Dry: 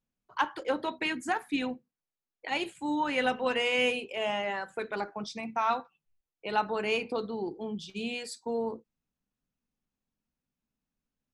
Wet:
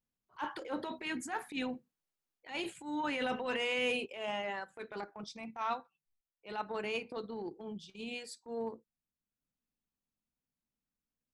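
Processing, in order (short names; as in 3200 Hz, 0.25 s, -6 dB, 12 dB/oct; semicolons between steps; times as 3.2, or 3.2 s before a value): transient shaper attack -12 dB, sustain +6 dB, from 4.05 s sustain -5 dB; gain -5 dB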